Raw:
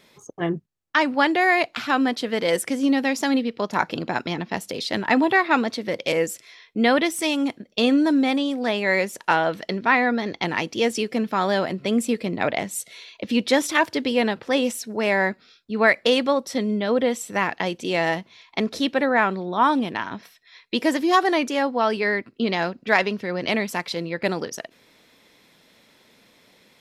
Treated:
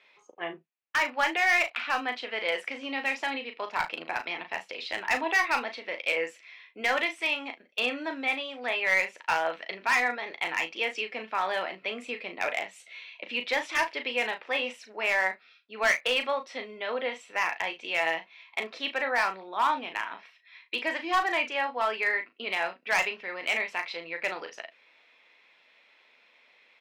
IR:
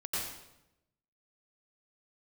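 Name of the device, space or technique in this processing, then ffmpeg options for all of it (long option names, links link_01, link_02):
megaphone: -filter_complex "[0:a]highpass=660,lowpass=3100,equalizer=frequency=2500:width_type=o:width=0.52:gain=9,asoftclip=type=hard:threshold=-13.5dB,asplit=2[link_01][link_02];[link_02]adelay=37,volume=-8dB[link_03];[link_01][link_03]amix=inputs=2:normalize=0,aecho=1:1:12|36:0.251|0.15,volume=-5.5dB"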